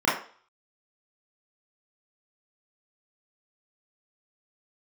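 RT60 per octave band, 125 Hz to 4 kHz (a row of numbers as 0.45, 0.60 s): 0.25, 0.35, 0.45, 0.45, 0.40, 0.45 s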